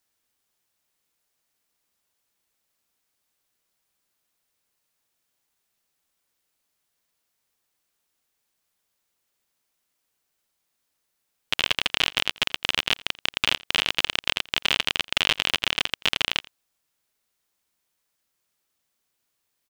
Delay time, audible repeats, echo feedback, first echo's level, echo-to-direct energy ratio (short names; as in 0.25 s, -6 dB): 85 ms, 1, no steady repeat, -23.0 dB, -23.0 dB